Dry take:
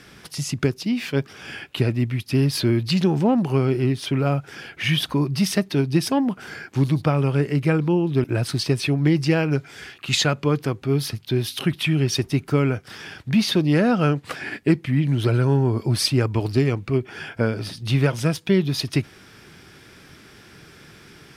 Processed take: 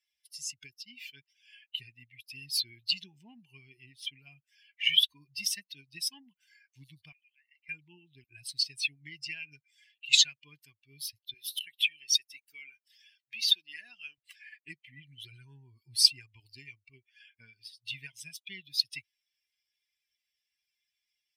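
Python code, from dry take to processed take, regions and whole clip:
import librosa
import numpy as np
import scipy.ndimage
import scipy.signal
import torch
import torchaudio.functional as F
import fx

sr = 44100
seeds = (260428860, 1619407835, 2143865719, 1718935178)

y = fx.chain(x, sr, fx.cheby1_highpass(hz=1700.0, order=4),
    fx.spacing_loss(db_at_10k=22), at=(7.12, 7.69))
y = fx.chain(y, sr, fx.highpass(hz=590.0, slope=6),
    fx.high_shelf(hz=12000.0, db=3.0), at=(11.34, 14.18))
y = fx.bin_expand(y, sr, power=2.0)
y = scipy.signal.sosfilt(scipy.signal.cheby2(4, 40, 1400.0, 'highpass', fs=sr, output='sos'), y)
y = fx.high_shelf(y, sr, hz=5000.0, db=-9.0)
y = F.gain(torch.from_numpy(y), 8.5).numpy()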